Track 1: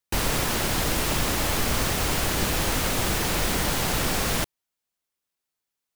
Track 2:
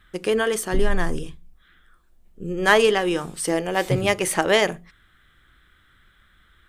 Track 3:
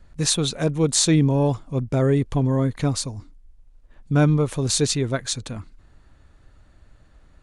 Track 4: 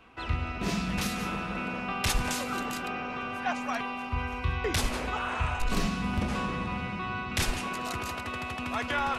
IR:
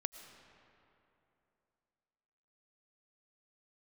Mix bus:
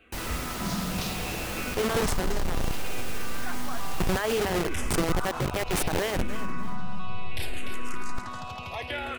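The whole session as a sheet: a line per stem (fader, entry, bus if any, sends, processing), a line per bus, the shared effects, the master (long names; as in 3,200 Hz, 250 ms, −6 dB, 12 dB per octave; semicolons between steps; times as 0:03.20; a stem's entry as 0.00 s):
−10.0 dB, 0.00 s, no send, no echo send, no processing
+3.0 dB, 1.50 s, no send, echo send −22.5 dB, hold until the input has moved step −16.5 dBFS
muted
+0.5 dB, 0.00 s, no send, echo send −11.5 dB, frequency shifter mixed with the dry sound −0.66 Hz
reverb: not used
echo: repeating echo 296 ms, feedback 30%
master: brickwall limiter −19 dBFS, peak gain reduction 19 dB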